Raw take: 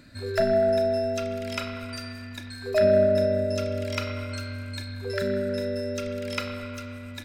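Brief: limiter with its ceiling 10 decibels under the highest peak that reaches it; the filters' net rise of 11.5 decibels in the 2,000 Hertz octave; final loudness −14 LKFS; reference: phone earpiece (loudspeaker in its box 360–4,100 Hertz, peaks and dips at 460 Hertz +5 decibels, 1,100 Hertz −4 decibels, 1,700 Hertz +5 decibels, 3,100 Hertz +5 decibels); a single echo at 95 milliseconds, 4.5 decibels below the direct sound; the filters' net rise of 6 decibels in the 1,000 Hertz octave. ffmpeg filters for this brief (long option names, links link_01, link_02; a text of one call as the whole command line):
ffmpeg -i in.wav -af "equalizer=frequency=1000:width_type=o:gain=9,equalizer=frequency=2000:width_type=o:gain=8,alimiter=limit=-13dB:level=0:latency=1,highpass=360,equalizer=frequency=460:width_type=q:width=4:gain=5,equalizer=frequency=1100:width_type=q:width=4:gain=-4,equalizer=frequency=1700:width_type=q:width=4:gain=5,equalizer=frequency=3100:width_type=q:width=4:gain=5,lowpass=frequency=4100:width=0.5412,lowpass=frequency=4100:width=1.3066,aecho=1:1:95:0.596,volume=9.5dB" out.wav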